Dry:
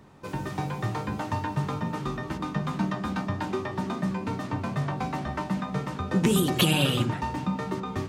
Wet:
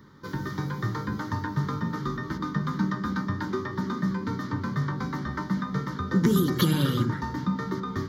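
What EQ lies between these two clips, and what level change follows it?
dynamic bell 3.3 kHz, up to -7 dB, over -46 dBFS, Q 1.2; bass shelf 95 Hz -7.5 dB; static phaser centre 2.6 kHz, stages 6; +4.0 dB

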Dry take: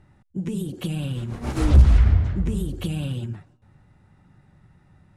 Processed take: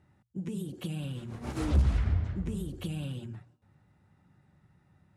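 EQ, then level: high-pass 63 Hz; hum notches 60/120 Hz; -8.0 dB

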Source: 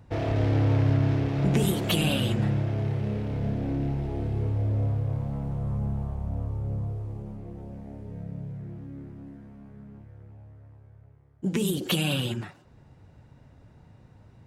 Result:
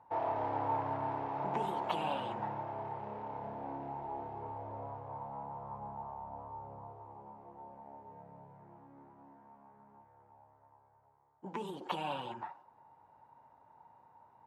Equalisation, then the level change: band-pass filter 910 Hz, Q 8.5; +11.5 dB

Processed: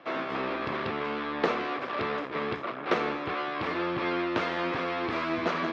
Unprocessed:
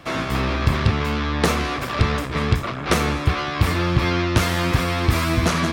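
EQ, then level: Chebyshev band-pass 370–7000 Hz, order 2; distance through air 320 m; -3.5 dB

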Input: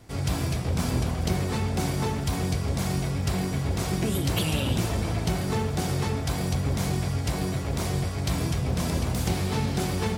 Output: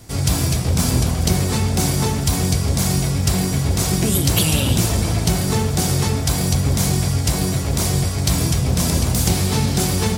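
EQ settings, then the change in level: tone controls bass +3 dB, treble +10 dB; +5.5 dB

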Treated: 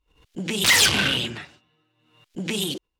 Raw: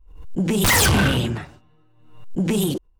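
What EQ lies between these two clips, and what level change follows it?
frequency weighting D; -6.5 dB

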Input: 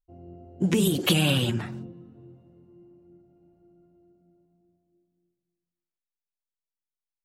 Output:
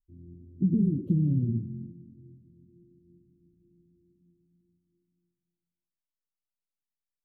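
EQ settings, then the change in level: inverse Chebyshev low-pass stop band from 740 Hz, stop band 50 dB; 0.0 dB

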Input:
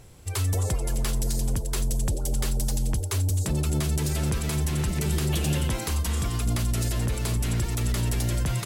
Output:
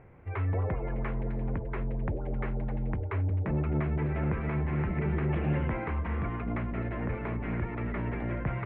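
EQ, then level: elliptic low-pass 2.2 kHz, stop band 60 dB; bass shelf 65 Hz -9.5 dB; hum notches 60/120 Hz; 0.0 dB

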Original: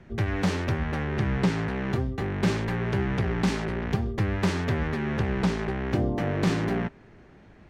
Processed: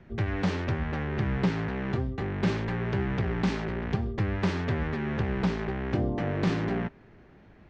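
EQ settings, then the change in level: distance through air 150 m; treble shelf 5.3 kHz +6.5 dB; -2.0 dB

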